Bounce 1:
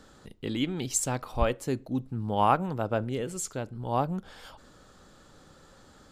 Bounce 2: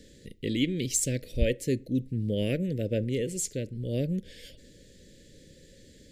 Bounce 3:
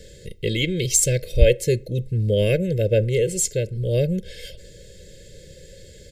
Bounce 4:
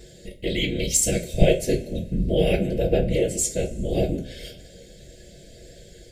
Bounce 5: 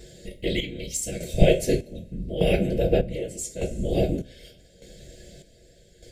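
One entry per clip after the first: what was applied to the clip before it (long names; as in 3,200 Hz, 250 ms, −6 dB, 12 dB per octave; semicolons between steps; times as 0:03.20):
de-essing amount 40%; elliptic band-stop filter 530–1,900 Hz, stop band 40 dB; level +3 dB
comb filter 1.9 ms, depth 93%; level +6.5 dB
random phases in short frames; coupled-rooms reverb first 0.24 s, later 1.8 s, from −22 dB, DRR 1 dB; level −4 dB
square-wave tremolo 0.83 Hz, depth 65%, duty 50%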